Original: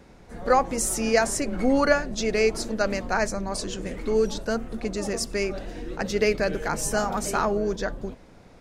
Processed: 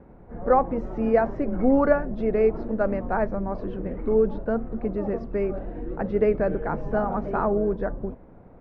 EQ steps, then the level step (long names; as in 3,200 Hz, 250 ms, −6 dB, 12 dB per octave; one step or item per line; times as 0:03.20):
low-pass filter 1,100 Hz 12 dB per octave
high-frequency loss of the air 230 metres
+2.5 dB